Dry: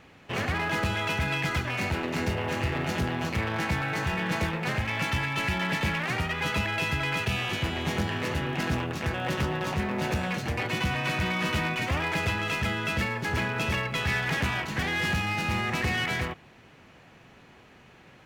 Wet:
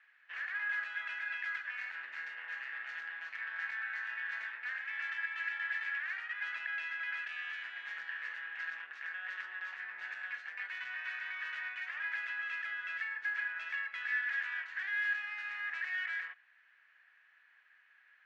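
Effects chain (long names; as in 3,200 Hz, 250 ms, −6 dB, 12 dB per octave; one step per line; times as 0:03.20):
four-pole ladder band-pass 1,800 Hz, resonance 75%
level −3 dB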